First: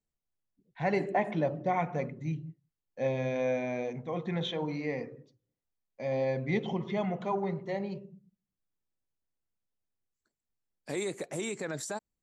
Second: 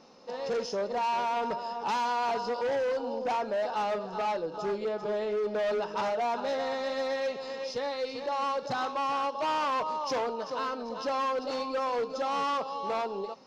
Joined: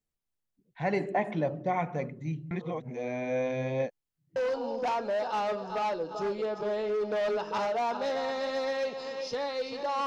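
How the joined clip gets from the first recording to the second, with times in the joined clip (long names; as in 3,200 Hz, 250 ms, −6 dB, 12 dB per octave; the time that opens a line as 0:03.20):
first
0:02.51–0:04.36: reverse
0:04.36: continue with second from 0:02.79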